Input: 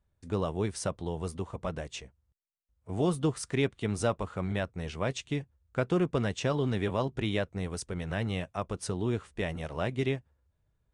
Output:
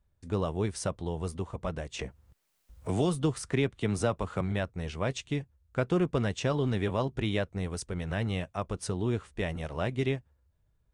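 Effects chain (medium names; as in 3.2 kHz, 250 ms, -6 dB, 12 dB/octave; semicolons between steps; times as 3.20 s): bass shelf 60 Hz +6.5 dB; 1.99–4.41 s: three bands compressed up and down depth 70%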